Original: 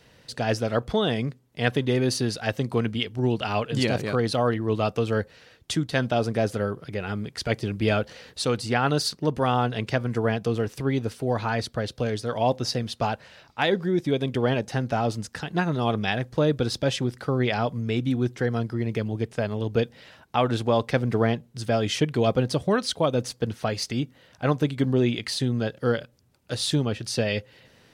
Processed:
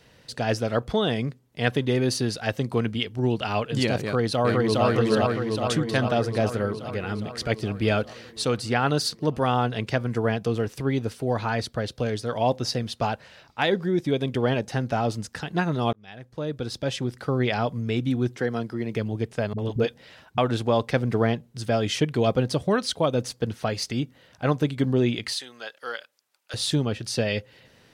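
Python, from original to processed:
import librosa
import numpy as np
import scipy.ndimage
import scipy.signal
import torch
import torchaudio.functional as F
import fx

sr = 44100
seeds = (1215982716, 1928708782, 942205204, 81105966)

y = fx.echo_throw(x, sr, start_s=4.03, length_s=0.82, ms=410, feedback_pct=70, wet_db=0.0)
y = fx.highpass(y, sr, hz=160.0, slope=12, at=(18.37, 18.96))
y = fx.dispersion(y, sr, late='highs', ms=53.0, hz=310.0, at=(19.53, 20.38))
y = fx.highpass(y, sr, hz=1000.0, slope=12, at=(25.33, 26.54))
y = fx.edit(y, sr, fx.fade_in_span(start_s=15.93, length_s=1.38), tone=tone)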